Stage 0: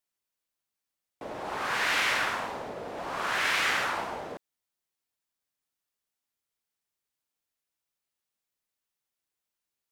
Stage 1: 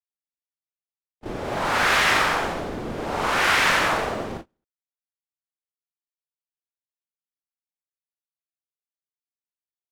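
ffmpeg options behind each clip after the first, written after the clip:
-af "aecho=1:1:40|86|138.9|199.7|269.7:0.631|0.398|0.251|0.158|0.1,afreqshift=-240,agate=range=-29dB:threshold=-39dB:ratio=16:detection=peak,volume=5.5dB"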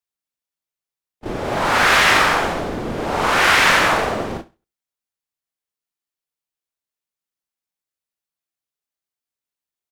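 -af "aecho=1:1:67|134:0.112|0.0269,volume=5.5dB"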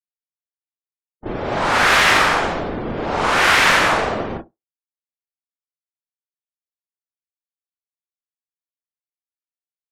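-af "afftdn=nr=31:nf=-43"

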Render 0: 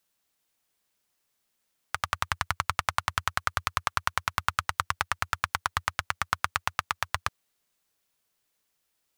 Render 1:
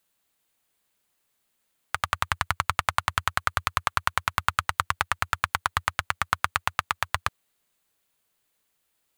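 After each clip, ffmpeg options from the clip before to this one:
-af "equalizer=f=5.5k:t=o:w=0.37:g=-6,volume=3dB"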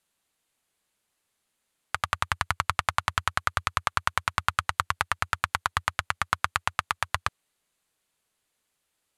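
-af "lowpass=f=12k:w=0.5412,lowpass=f=12k:w=1.3066,volume=-1dB"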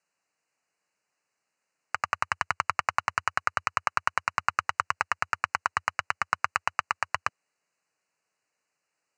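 -af "asuperstop=centerf=3400:order=20:qfactor=3.6,highpass=180,equalizer=f=230:t=q:w=4:g=-7,equalizer=f=360:t=q:w=4:g=-5,equalizer=f=4.1k:t=q:w=4:g=-8,lowpass=f=7.1k:w=0.5412,lowpass=f=7.1k:w=1.3066"

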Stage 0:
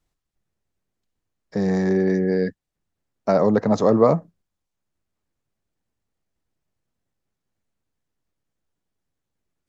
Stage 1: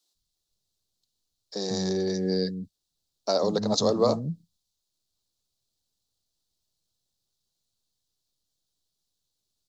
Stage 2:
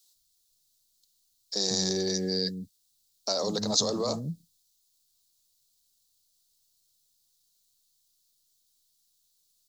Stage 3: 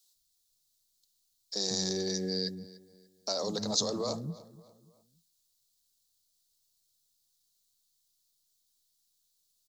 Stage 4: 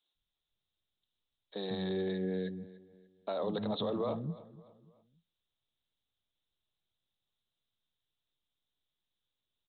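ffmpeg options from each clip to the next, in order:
-filter_complex "[0:a]highshelf=f=2.9k:t=q:w=3:g=12,acrossover=split=240[a][b];[a]adelay=150[c];[c][b]amix=inputs=2:normalize=0,volume=-5.5dB"
-af "alimiter=limit=-19.5dB:level=0:latency=1:release=12,crystalizer=i=4.5:c=0,volume=-3dB"
-filter_complex "[0:a]asplit=2[a][b];[b]adelay=292,lowpass=f=3.6k:p=1,volume=-18dB,asplit=2[c][d];[d]adelay=292,lowpass=f=3.6k:p=1,volume=0.41,asplit=2[e][f];[f]adelay=292,lowpass=f=3.6k:p=1,volume=0.41[g];[a][c][e][g]amix=inputs=4:normalize=0,volume=-4dB"
-af "aresample=8000,aresample=44100"

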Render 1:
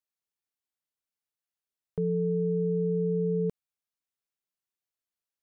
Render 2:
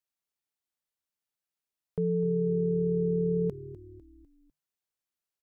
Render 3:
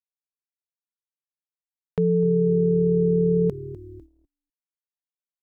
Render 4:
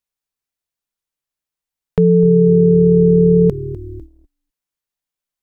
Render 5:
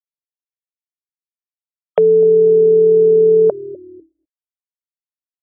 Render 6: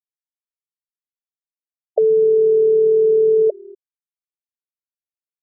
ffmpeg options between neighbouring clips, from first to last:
-filter_complex "[0:a]asplit=5[a][b][c][d][e];[b]adelay=250,afreqshift=-38,volume=-16dB[f];[c]adelay=500,afreqshift=-76,volume=-22.4dB[g];[d]adelay=750,afreqshift=-114,volume=-28.8dB[h];[e]adelay=1000,afreqshift=-152,volume=-35.1dB[i];[a][f][g][h][i]amix=inputs=5:normalize=0"
-af "agate=range=-38dB:threshold=-52dB:ratio=16:detection=peak,volume=7.5dB"
-af "lowshelf=f=63:g=11,volume=8.5dB"
-af "afftfilt=real='re*gte(hypot(re,im),0.0158)':imag='im*gte(hypot(re,im),0.0158)':win_size=1024:overlap=0.75,highpass=f=600:t=q:w=5.5,volume=3dB"
-af "afftfilt=real='re*gte(hypot(re,im),0.447)':imag='im*gte(hypot(re,im),0.447)':win_size=1024:overlap=0.75,volume=-3.5dB"

